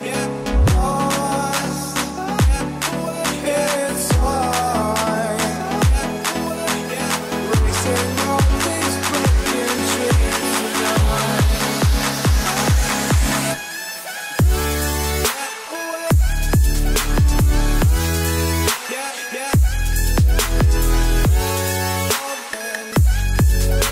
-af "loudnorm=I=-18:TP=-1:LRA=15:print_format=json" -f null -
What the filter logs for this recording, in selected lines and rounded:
"input_i" : "-18.9",
"input_tp" : "-6.5",
"input_lra" : "2.0",
"input_thresh" : "-28.9",